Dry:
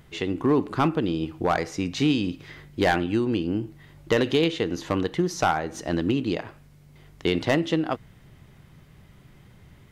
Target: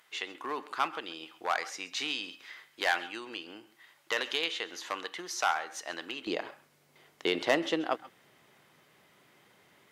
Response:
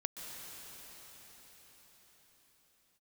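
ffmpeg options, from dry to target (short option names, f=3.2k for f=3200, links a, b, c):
-filter_complex "[0:a]asetnsamples=n=441:p=0,asendcmd='6.27 highpass f 430',highpass=1k[a];[1:a]atrim=start_sample=2205,afade=t=out:st=0.17:d=0.01,atrim=end_sample=7938,asetrate=40131,aresample=44100[b];[a][b]afir=irnorm=-1:irlink=0"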